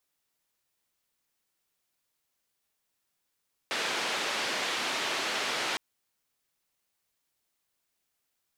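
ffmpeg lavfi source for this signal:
-f lavfi -i "anoisesrc=c=white:d=2.06:r=44100:seed=1,highpass=f=290,lowpass=f=3600,volume=-18.8dB"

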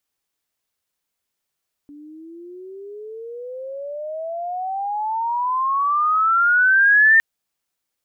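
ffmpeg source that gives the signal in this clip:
-f lavfi -i "aevalsrc='pow(10,(-9+29*(t/5.31-1))/20)*sin(2*PI*287*5.31/(32*log(2)/12)*(exp(32*log(2)/12*t/5.31)-1))':d=5.31:s=44100"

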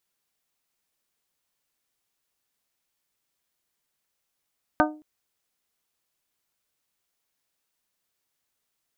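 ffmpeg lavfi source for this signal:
-f lavfi -i "aevalsrc='0.112*pow(10,-3*t/0.41)*sin(2*PI*305*t)+0.112*pow(10,-3*t/0.252)*sin(2*PI*610*t)+0.112*pow(10,-3*t/0.222)*sin(2*PI*732*t)+0.112*pow(10,-3*t/0.19)*sin(2*PI*915*t)+0.112*pow(10,-3*t/0.155)*sin(2*PI*1220*t)+0.112*pow(10,-3*t/0.133)*sin(2*PI*1525*t)':d=0.22:s=44100"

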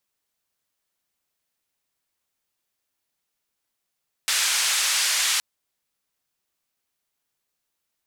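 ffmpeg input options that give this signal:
-f lavfi -i "anoisesrc=c=white:d=1.12:r=44100:seed=1,highpass=f=1400,lowpass=f=8000,volume=-12.5dB"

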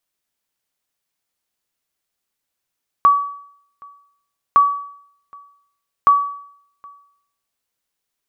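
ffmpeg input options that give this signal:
-f lavfi -i "aevalsrc='0.562*(sin(2*PI*1140*mod(t,1.51))*exp(-6.91*mod(t,1.51)/0.66)+0.0376*sin(2*PI*1140*max(mod(t,1.51)-0.77,0))*exp(-6.91*max(mod(t,1.51)-0.77,0)/0.66))':d=4.53:s=44100"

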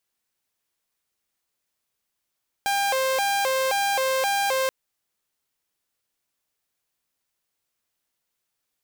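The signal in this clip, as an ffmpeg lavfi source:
-f lavfi -i "aevalsrc='0.119*(2*mod((663*t+136/1.9*(0.5-abs(mod(1.9*t,1)-0.5))),1)-1)':d=2.03:s=44100"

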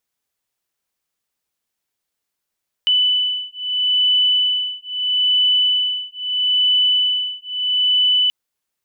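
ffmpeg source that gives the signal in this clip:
-f lavfi -i "aevalsrc='0.126*(sin(2*PI*2990*t)+sin(2*PI*2990.77*t))':d=5.43:s=44100"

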